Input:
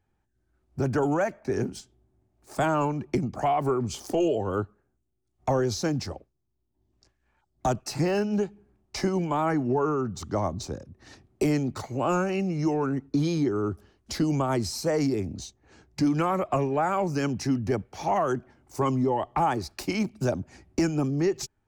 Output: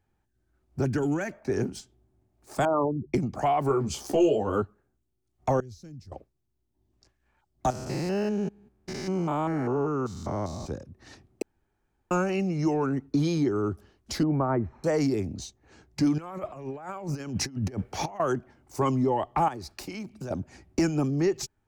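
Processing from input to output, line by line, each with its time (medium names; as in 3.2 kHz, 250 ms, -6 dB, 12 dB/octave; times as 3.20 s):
0.85–1.29 s: high-order bell 790 Hz -9.5 dB
2.65–3.14 s: resonances exaggerated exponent 3
3.69–4.62 s: doubling 14 ms -3.5 dB
5.60–6.12 s: amplifier tone stack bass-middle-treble 10-0-1
7.70–10.67 s: spectrogram pixelated in time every 200 ms
11.42–12.11 s: room tone
14.23–14.84 s: inverse Chebyshev low-pass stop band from 4.4 kHz, stop band 50 dB
16.18–18.20 s: compressor with a negative ratio -32 dBFS, ratio -0.5
19.48–20.31 s: compression 4:1, threshold -35 dBFS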